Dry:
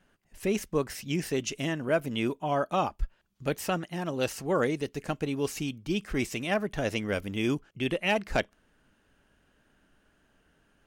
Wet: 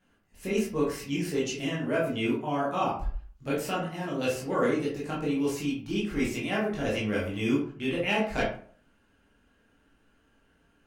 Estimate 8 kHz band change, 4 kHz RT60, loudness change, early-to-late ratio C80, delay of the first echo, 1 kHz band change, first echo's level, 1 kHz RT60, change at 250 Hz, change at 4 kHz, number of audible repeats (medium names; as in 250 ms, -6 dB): -2.0 dB, 0.30 s, +1.0 dB, 9.0 dB, no echo, +0.5 dB, no echo, 0.45 s, +2.5 dB, -0.5 dB, no echo